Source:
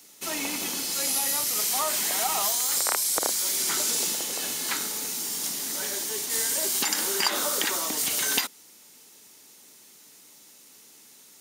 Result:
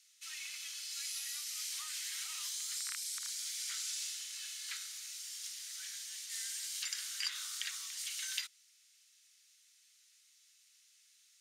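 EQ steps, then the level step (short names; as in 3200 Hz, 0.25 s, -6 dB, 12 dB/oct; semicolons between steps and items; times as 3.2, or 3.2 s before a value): Bessel high-pass 2500 Hz, order 8; air absorption 57 m; -8.0 dB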